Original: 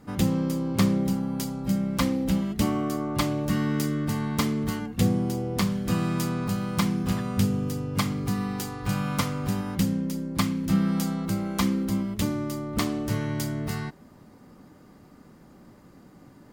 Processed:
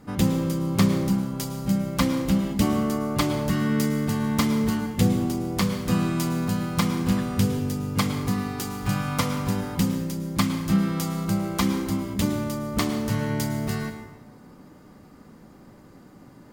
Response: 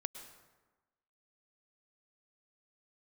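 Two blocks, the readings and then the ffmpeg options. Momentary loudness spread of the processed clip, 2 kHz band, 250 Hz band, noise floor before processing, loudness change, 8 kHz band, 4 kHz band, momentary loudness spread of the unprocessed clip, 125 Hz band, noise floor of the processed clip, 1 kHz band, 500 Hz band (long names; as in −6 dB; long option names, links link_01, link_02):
5 LU, +2.5 dB, +2.0 dB, −52 dBFS, +2.0 dB, +2.5 dB, +2.5 dB, 5 LU, +2.0 dB, −49 dBFS, +2.5 dB, +2.5 dB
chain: -filter_complex "[1:a]atrim=start_sample=2205[link_01];[0:a][link_01]afir=irnorm=-1:irlink=0,volume=4dB"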